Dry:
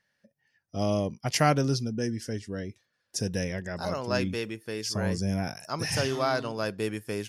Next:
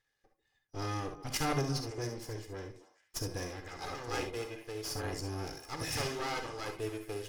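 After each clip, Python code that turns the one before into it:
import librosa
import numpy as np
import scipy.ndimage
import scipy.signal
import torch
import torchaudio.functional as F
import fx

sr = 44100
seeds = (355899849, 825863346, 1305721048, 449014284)

y = fx.lower_of_two(x, sr, delay_ms=2.4)
y = fx.echo_stepped(y, sr, ms=138, hz=340.0, octaves=1.4, feedback_pct=70, wet_db=-10.5)
y = fx.rev_gated(y, sr, seeds[0], gate_ms=90, shape='rising', drr_db=5.5)
y = F.gain(torch.from_numpy(y), -5.5).numpy()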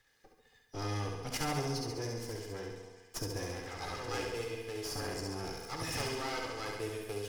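y = fx.room_flutter(x, sr, wall_m=11.7, rt60_s=0.88)
y = fx.band_squash(y, sr, depth_pct=40)
y = F.gain(torch.from_numpy(y), -2.0).numpy()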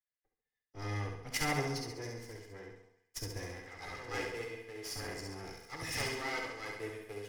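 y = fx.peak_eq(x, sr, hz=2000.0, db=10.0, octaves=0.3)
y = fx.band_widen(y, sr, depth_pct=100)
y = F.gain(torch.from_numpy(y), -3.5).numpy()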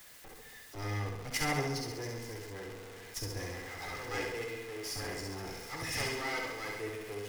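y = x + 0.5 * 10.0 ** (-43.0 / 20.0) * np.sign(x)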